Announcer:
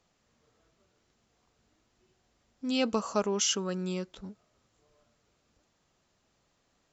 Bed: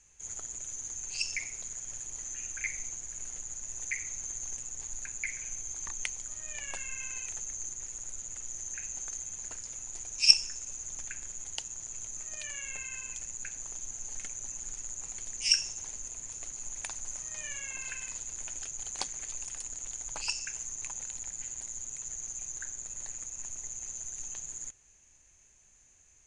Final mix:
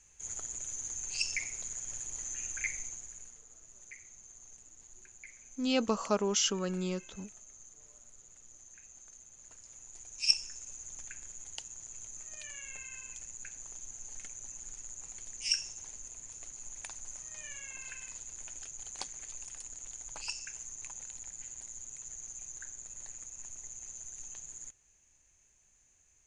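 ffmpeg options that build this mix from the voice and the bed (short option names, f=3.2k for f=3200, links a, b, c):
-filter_complex "[0:a]adelay=2950,volume=-1dB[a];[1:a]volume=10dB,afade=t=out:st=2.61:d=0.79:silence=0.16788,afade=t=in:st=9.32:d=1.28:silence=0.316228[b];[a][b]amix=inputs=2:normalize=0"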